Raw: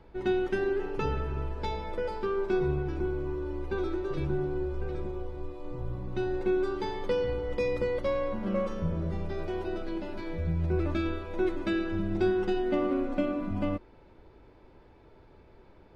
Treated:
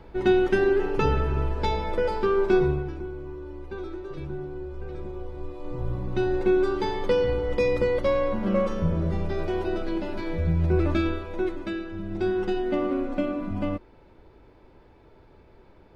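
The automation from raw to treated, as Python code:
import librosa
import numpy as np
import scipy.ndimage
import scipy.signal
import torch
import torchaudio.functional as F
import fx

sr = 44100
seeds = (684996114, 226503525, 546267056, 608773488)

y = fx.gain(x, sr, db=fx.line((2.57, 7.5), (3.04, -4.0), (4.62, -4.0), (5.89, 6.0), (10.98, 6.0), (11.93, -4.5), (12.38, 2.0)))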